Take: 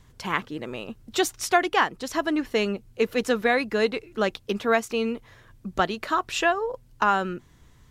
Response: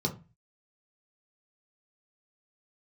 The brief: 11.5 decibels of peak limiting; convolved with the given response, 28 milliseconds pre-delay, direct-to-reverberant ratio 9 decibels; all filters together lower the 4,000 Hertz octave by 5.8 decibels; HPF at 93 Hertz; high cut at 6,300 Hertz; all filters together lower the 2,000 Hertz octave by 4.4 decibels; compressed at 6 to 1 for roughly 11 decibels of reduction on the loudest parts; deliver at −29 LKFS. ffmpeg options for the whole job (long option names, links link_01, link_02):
-filter_complex "[0:a]highpass=93,lowpass=6300,equalizer=frequency=2000:width_type=o:gain=-4.5,equalizer=frequency=4000:width_type=o:gain=-5.5,acompressor=threshold=-29dB:ratio=6,alimiter=level_in=2.5dB:limit=-24dB:level=0:latency=1,volume=-2.5dB,asplit=2[link_01][link_02];[1:a]atrim=start_sample=2205,adelay=28[link_03];[link_02][link_03]afir=irnorm=-1:irlink=0,volume=-15dB[link_04];[link_01][link_04]amix=inputs=2:normalize=0,volume=6.5dB"